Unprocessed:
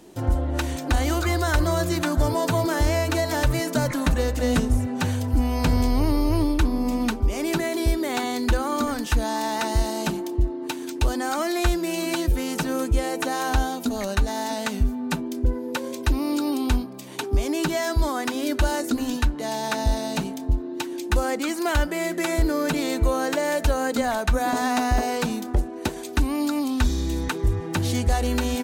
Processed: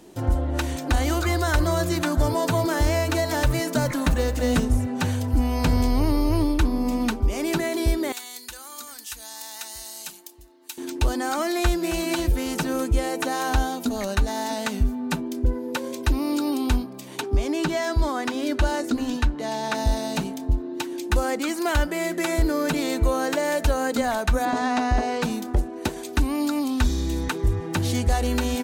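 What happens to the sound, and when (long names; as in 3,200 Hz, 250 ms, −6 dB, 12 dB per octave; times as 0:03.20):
0:02.73–0:04.64: floating-point word with a short mantissa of 4 bits
0:08.12–0:10.78: first-order pre-emphasis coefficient 0.97
0:11.54–0:12.00: delay throw 270 ms, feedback 50%, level −12 dB
0:17.21–0:19.75: parametric band 14,000 Hz −9.5 dB 1.2 octaves
0:24.45–0:25.23: high-frequency loss of the air 83 metres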